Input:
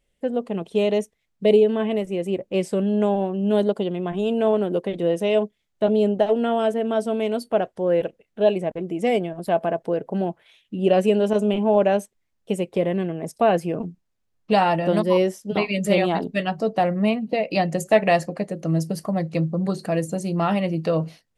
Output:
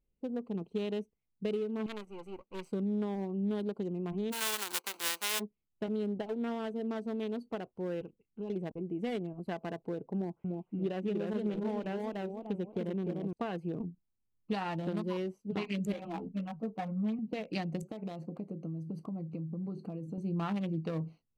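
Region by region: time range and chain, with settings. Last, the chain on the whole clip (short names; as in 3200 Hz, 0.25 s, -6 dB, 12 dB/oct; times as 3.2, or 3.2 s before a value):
1.86–2.72 half-wave gain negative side -12 dB + tilt shelf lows -10 dB, about 780 Hz
4.31–5.39 spectral whitening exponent 0.1 + HPF 370 Hz 24 dB/oct
8.01–8.5 bell 620 Hz -13.5 dB 0.57 oct + compressor 3:1, threshold -26 dBFS
10.15–13.33 tone controls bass -1 dB, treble -12 dB + warbling echo 0.297 s, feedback 37%, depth 143 cents, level -3.5 dB
15.92–17.19 LPF 2200 Hz + notch 370 Hz, Q 5.1 + ensemble effect
17.82–20.18 low shelf 400 Hz +7.5 dB + compressor 16:1, threshold -23 dBFS + HPF 210 Hz 6 dB/oct
whole clip: Wiener smoothing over 25 samples; compressor, threshold -21 dBFS; bell 610 Hz -10.5 dB 0.7 oct; gain -7 dB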